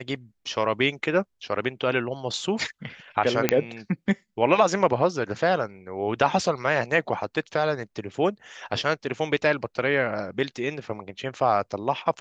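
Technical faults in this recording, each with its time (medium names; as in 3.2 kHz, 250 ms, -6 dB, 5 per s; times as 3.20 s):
3.49 s: pop -3 dBFS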